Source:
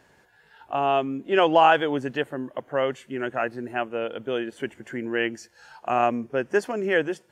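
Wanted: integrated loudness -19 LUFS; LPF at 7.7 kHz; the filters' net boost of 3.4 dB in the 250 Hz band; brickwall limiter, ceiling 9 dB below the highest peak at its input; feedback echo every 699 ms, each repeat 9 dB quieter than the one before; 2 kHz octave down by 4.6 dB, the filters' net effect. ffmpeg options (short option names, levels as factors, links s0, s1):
-af "lowpass=7700,equalizer=f=250:t=o:g=4.5,equalizer=f=2000:t=o:g=-6.5,alimiter=limit=0.188:level=0:latency=1,aecho=1:1:699|1398|2097|2796:0.355|0.124|0.0435|0.0152,volume=2.37"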